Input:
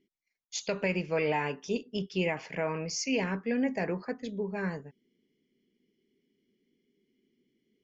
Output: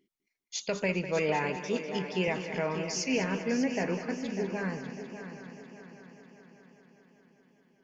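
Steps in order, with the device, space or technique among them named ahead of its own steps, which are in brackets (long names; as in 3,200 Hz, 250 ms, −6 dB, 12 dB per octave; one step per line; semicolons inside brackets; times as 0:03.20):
multi-head tape echo (echo machine with several playback heads 199 ms, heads first and third, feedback 63%, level −11.5 dB; tape wow and flutter 21 cents)
0:01.56–0:02.28: high-pass filter 160 Hz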